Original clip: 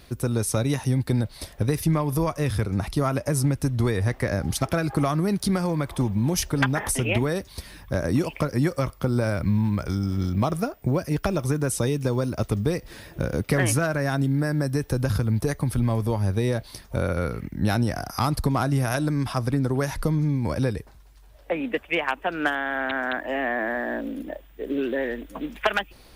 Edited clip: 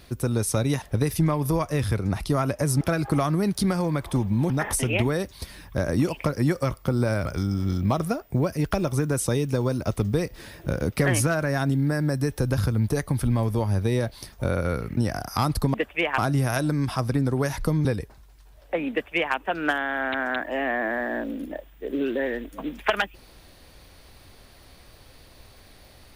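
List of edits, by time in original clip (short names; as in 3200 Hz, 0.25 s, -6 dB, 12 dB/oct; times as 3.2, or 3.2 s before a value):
0.82–1.49 cut
3.48–4.66 cut
6.35–6.66 cut
9.42–9.78 cut
17.49–17.79 cut
20.23–20.62 cut
21.68–22.12 copy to 18.56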